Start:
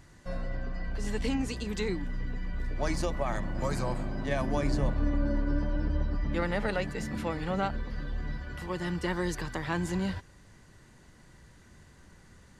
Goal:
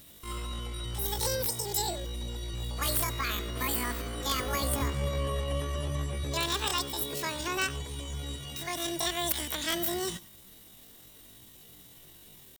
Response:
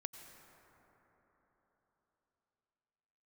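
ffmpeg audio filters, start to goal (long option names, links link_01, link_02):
-filter_complex "[0:a]crystalizer=i=9:c=0,asetrate=85689,aresample=44100,atempo=0.514651,aeval=exprs='(mod(3.98*val(0)+1,2)-1)/3.98':channel_layout=same[link_01];[1:a]atrim=start_sample=2205,atrim=end_sample=4410[link_02];[link_01][link_02]afir=irnorm=-1:irlink=0"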